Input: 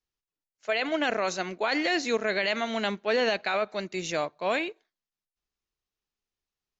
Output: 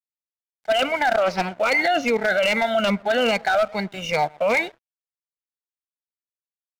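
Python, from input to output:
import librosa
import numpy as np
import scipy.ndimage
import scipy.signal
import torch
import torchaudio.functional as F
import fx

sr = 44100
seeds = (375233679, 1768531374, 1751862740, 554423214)

p1 = fx.spec_ripple(x, sr, per_octave=0.87, drift_hz=-2.5, depth_db=16)
p2 = scipy.signal.sosfilt(scipy.signal.butter(2, 2700.0, 'lowpass', fs=sr, output='sos'), p1)
p3 = p2 + 0.72 * np.pad(p2, (int(1.4 * sr / 1000.0), 0))[:len(p2)]
p4 = fx.over_compress(p3, sr, threshold_db=-24.0, ratio=-0.5)
p5 = p3 + (p4 * 10.0 ** (-0.5 / 20.0))
p6 = 10.0 ** (-11.5 / 20.0) * (np.abs((p5 / 10.0 ** (-11.5 / 20.0) + 3.0) % 4.0 - 2.0) - 1.0)
p7 = p6 + fx.echo_bbd(p6, sr, ms=121, stages=1024, feedback_pct=30, wet_db=-21, dry=0)
p8 = np.sign(p7) * np.maximum(np.abs(p7) - 10.0 ** (-43.0 / 20.0), 0.0)
p9 = fx.vibrato(p8, sr, rate_hz=0.32, depth_cents=22.0)
p10 = fx.doppler_dist(p9, sr, depth_ms=0.27, at=(1.14, 1.56))
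y = p10 * 10.0 ** (-1.0 / 20.0)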